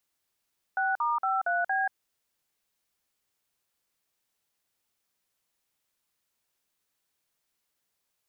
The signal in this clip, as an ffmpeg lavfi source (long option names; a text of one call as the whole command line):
ffmpeg -f lavfi -i "aevalsrc='0.0447*clip(min(mod(t,0.231),0.183-mod(t,0.231))/0.002,0,1)*(eq(floor(t/0.231),0)*(sin(2*PI*770*mod(t,0.231))+sin(2*PI*1477*mod(t,0.231)))+eq(floor(t/0.231),1)*(sin(2*PI*941*mod(t,0.231))+sin(2*PI*1209*mod(t,0.231)))+eq(floor(t/0.231),2)*(sin(2*PI*770*mod(t,0.231))+sin(2*PI*1336*mod(t,0.231)))+eq(floor(t/0.231),3)*(sin(2*PI*697*mod(t,0.231))+sin(2*PI*1477*mod(t,0.231)))+eq(floor(t/0.231),4)*(sin(2*PI*770*mod(t,0.231))+sin(2*PI*1633*mod(t,0.231))))':duration=1.155:sample_rate=44100" out.wav